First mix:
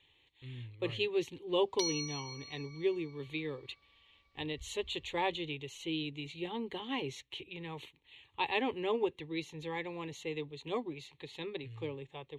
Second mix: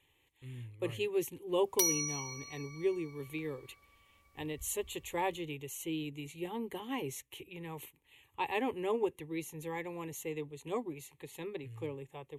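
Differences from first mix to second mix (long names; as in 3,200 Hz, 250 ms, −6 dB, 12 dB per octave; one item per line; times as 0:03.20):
background +6.5 dB
master: remove low-pass with resonance 4,000 Hz, resonance Q 3.3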